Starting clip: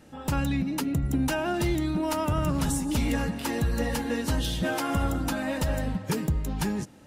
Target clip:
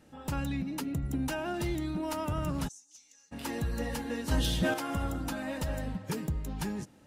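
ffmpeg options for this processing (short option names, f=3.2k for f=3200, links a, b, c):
-filter_complex "[0:a]asplit=3[a][b][c];[a]afade=t=out:st=2.67:d=0.02[d];[b]bandpass=f=6.2k:t=q:w=8.5:csg=0,afade=t=in:st=2.67:d=0.02,afade=t=out:st=3.31:d=0.02[e];[c]afade=t=in:st=3.31:d=0.02[f];[d][e][f]amix=inputs=3:normalize=0,asettb=1/sr,asplit=3[g][h][i];[g]atrim=end=4.314[j];[h]atrim=start=4.31:end=4.74,asetpts=PTS-STARTPTS,afade=t=in:d=0.004:c=qsin,afade=t=out:st=0.426:d=0.004:c=qsin,acontrast=53[k];[i]atrim=start=4.736[l];[j][k]acrossfade=d=0.004:c1=hsin:c2=qsin[m];[m][l]acrossfade=d=0.004:c1=qsin:c2=hsin,volume=-6.5dB"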